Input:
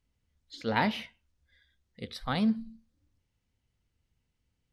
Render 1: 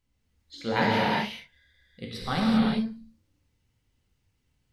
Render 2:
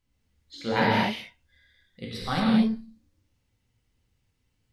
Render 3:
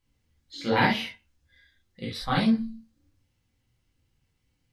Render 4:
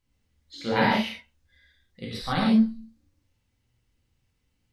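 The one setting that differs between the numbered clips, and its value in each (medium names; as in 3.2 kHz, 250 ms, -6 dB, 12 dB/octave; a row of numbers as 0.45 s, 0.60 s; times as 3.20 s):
gated-style reverb, gate: 420 ms, 260 ms, 90 ms, 170 ms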